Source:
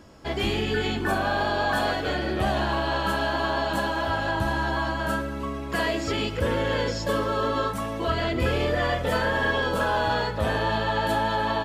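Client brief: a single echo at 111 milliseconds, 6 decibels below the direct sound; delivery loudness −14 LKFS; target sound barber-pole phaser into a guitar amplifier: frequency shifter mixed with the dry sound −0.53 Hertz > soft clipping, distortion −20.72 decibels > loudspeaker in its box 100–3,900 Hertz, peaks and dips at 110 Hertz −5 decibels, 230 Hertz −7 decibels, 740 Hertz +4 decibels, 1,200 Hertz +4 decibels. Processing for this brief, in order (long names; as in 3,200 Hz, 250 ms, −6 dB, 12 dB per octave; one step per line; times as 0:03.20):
single-tap delay 111 ms −6 dB
frequency shifter mixed with the dry sound −0.53 Hz
soft clipping −19 dBFS
loudspeaker in its box 100–3,900 Hz, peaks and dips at 110 Hz −5 dB, 230 Hz −7 dB, 740 Hz +4 dB, 1,200 Hz +4 dB
level +14.5 dB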